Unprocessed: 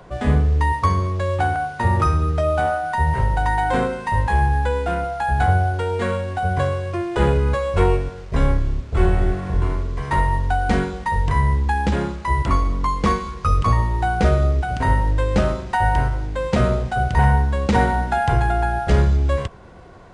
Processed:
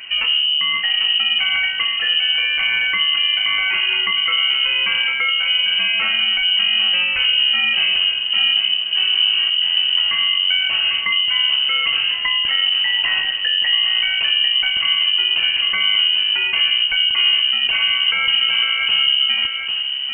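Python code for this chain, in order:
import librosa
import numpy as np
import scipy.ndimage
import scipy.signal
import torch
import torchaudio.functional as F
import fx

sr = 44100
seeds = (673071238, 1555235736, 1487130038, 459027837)

p1 = fx.peak_eq(x, sr, hz=130.0, db=13.5, octaves=0.5)
p2 = fx.over_compress(p1, sr, threshold_db=-23.0, ratio=-1.0)
p3 = p1 + (p2 * librosa.db_to_amplitude(3.0))
p4 = 10.0 ** (-5.5 / 20.0) * np.tanh(p3 / 10.0 ** (-5.5 / 20.0))
p5 = p4 + 10.0 ** (-6.5 / 20.0) * np.pad(p4, (int(797 * sr / 1000.0), 0))[:len(p4)]
p6 = fx.freq_invert(p5, sr, carrier_hz=3000)
y = p6 * librosa.db_to_amplitude(-6.0)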